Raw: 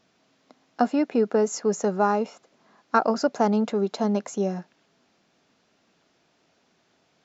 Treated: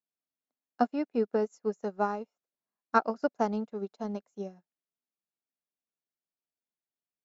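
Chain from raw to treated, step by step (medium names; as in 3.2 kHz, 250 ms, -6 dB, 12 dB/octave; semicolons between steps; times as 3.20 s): upward expansion 2.5:1, over -40 dBFS; trim -2.5 dB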